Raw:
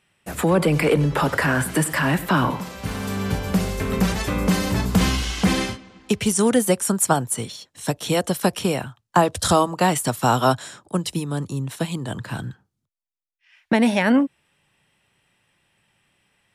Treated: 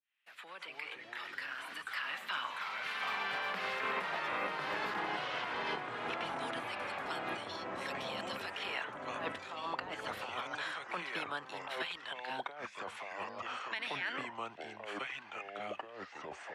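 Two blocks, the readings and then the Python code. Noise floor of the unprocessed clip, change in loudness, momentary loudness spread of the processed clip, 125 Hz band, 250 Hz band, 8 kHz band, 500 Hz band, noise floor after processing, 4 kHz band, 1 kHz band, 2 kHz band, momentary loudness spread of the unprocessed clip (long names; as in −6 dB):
−78 dBFS, −17.5 dB, 8 LU, −33.0 dB, −28.0 dB, −30.5 dB, −19.5 dB, −54 dBFS, −11.5 dB, −13.5 dB, −9.5 dB, 11 LU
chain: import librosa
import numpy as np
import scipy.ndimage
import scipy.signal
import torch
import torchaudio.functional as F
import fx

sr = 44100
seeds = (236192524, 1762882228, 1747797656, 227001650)

y = fx.fade_in_head(x, sr, length_s=2.86)
y = fx.filter_lfo_highpass(y, sr, shape='sine', hz=0.17, low_hz=950.0, high_hz=4500.0, q=0.72)
y = fx.over_compress(y, sr, threshold_db=-36.0, ratio=-1.0)
y = fx.air_absorb(y, sr, metres=370.0)
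y = fx.echo_pitch(y, sr, ms=128, semitones=-4, count=3, db_per_echo=-3.0)
y = fx.band_squash(y, sr, depth_pct=40)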